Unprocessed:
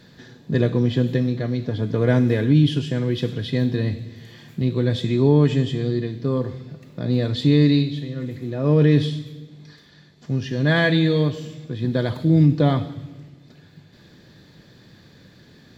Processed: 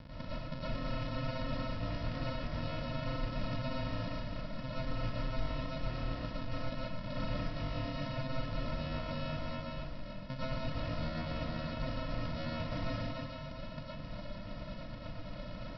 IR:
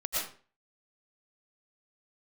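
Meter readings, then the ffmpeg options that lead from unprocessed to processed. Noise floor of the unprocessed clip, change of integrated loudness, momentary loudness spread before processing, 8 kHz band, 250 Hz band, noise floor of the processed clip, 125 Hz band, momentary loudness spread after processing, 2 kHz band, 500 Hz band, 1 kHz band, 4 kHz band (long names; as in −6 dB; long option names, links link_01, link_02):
−51 dBFS, −19.0 dB, 16 LU, can't be measured, −20.5 dB, −45 dBFS, −18.5 dB, 7 LU, −15.0 dB, −17.5 dB, −7.0 dB, −13.0 dB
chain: -filter_complex "[0:a]tiltshelf=frequency=720:gain=-4,areverse,acompressor=threshold=-28dB:ratio=6,areverse,alimiter=level_in=5dB:limit=-24dB:level=0:latency=1:release=18,volume=-5dB,acrossover=split=160|1200[link_01][link_02][link_03];[link_01]acompressor=threshold=-51dB:ratio=4[link_04];[link_02]acompressor=threshold=-45dB:ratio=4[link_05];[link_03]acompressor=threshold=-49dB:ratio=4[link_06];[link_04][link_05][link_06]amix=inputs=3:normalize=0,aresample=11025,acrusher=samples=28:mix=1:aa=0.000001,aresample=44100[link_07];[1:a]atrim=start_sample=2205[link_08];[link_07][link_08]afir=irnorm=-1:irlink=0,volume=2.5dB"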